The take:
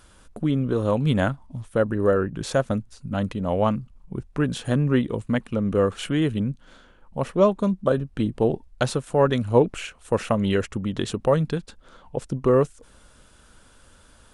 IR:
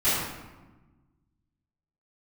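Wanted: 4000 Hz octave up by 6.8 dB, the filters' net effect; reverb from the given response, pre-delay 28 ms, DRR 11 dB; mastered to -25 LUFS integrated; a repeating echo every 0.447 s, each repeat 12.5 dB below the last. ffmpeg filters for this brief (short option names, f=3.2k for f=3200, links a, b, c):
-filter_complex "[0:a]equalizer=f=4k:t=o:g=9,aecho=1:1:447|894|1341:0.237|0.0569|0.0137,asplit=2[a][b];[1:a]atrim=start_sample=2205,adelay=28[c];[b][c]afir=irnorm=-1:irlink=0,volume=-26dB[d];[a][d]amix=inputs=2:normalize=0,volume=-1.5dB"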